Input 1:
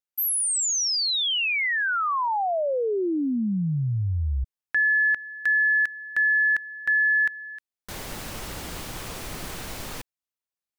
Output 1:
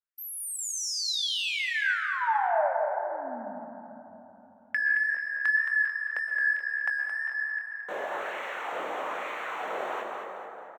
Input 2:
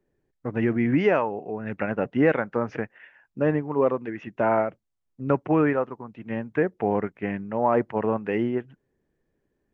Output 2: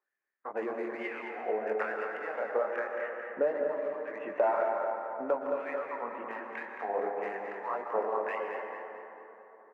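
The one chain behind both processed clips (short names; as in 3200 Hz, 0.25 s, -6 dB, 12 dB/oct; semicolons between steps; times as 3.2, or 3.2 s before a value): Wiener smoothing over 9 samples; HPF 150 Hz 24 dB/oct; high shelf 3100 Hz -9.5 dB; AGC gain up to 7 dB; chorus 1.9 Hz, delay 18.5 ms, depth 7.3 ms; compressor 10:1, threshold -30 dBFS; LFO high-pass sine 1.1 Hz 500–2100 Hz; on a send: feedback echo 0.22 s, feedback 42%, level -7.5 dB; on the sum: plate-style reverb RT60 3.5 s, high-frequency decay 0.3×, pre-delay 0.105 s, DRR 3.5 dB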